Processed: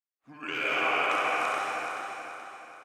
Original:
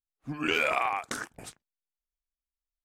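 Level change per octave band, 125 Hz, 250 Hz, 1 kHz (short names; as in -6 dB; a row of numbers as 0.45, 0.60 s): n/a, -4.5 dB, +4.0 dB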